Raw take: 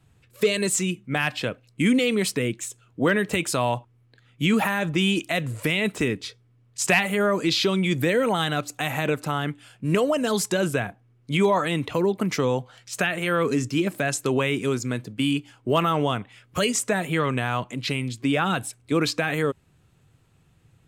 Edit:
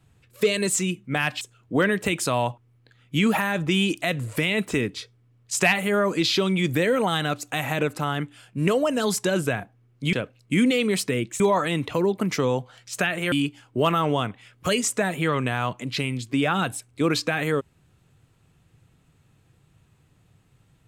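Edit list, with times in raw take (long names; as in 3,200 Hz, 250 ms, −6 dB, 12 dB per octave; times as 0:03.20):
0:01.41–0:02.68: move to 0:11.40
0:13.32–0:15.23: remove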